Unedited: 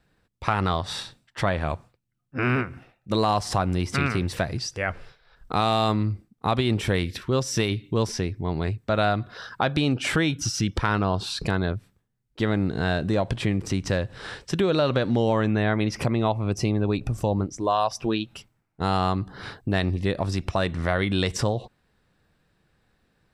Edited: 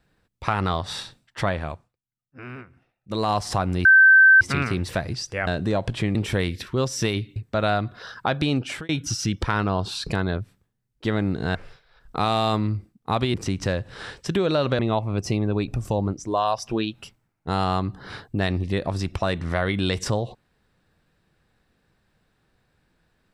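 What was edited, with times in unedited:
0:01.49–0:03.33: duck −15 dB, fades 0.40 s
0:03.85: insert tone 1,550 Hz −9 dBFS 0.56 s
0:04.91–0:06.70: swap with 0:12.90–0:13.58
0:07.91–0:08.71: remove
0:09.92–0:10.24: fade out
0:15.03–0:16.12: remove

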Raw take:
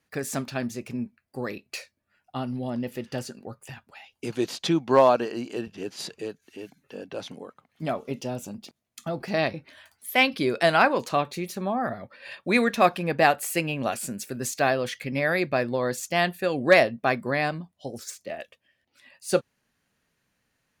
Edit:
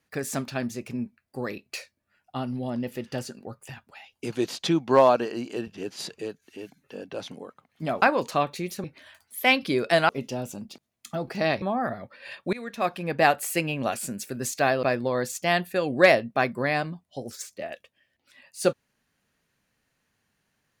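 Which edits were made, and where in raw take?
0:08.02–0:09.55: swap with 0:10.80–0:11.62
0:12.53–0:13.29: fade in, from −23.5 dB
0:14.83–0:15.51: remove

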